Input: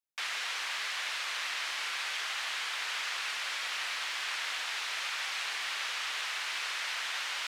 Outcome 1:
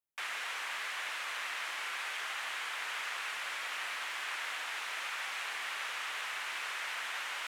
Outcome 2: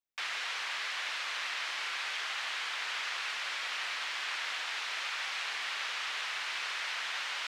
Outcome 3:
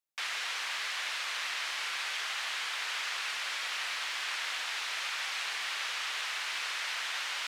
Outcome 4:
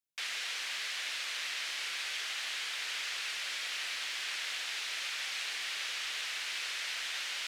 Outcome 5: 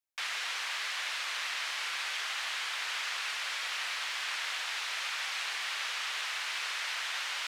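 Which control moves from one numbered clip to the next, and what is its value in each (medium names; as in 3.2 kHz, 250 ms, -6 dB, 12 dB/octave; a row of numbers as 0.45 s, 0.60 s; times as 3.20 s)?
peaking EQ, frequency: 4.7 kHz, 13 kHz, 62 Hz, 1 kHz, 170 Hz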